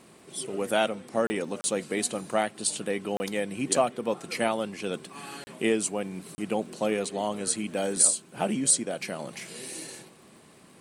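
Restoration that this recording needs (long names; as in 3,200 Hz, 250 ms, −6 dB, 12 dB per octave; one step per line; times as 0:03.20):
click removal
repair the gap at 0:01.27/0:01.61/0:03.17/0:05.44/0:06.35, 30 ms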